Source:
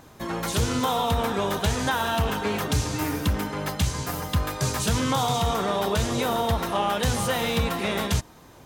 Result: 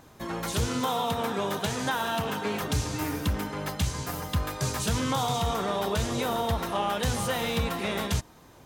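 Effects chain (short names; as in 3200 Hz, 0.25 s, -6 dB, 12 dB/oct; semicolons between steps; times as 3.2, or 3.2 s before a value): 0.68–2.62 HPF 110 Hz 24 dB/oct; gain -3.5 dB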